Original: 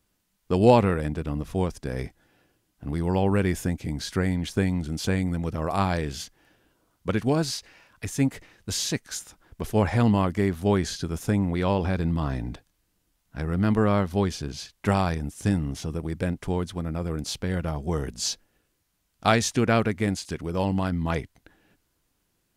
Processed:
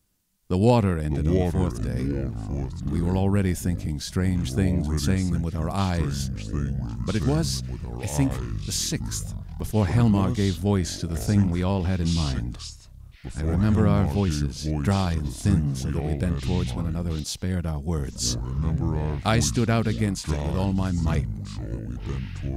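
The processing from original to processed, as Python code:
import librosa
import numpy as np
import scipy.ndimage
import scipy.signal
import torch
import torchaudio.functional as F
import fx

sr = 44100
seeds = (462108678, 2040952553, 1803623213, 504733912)

y = fx.echo_pitch(x, sr, ms=430, semitones=-5, count=3, db_per_echo=-6.0)
y = fx.bass_treble(y, sr, bass_db=7, treble_db=7)
y = F.gain(torch.from_numpy(y), -4.0).numpy()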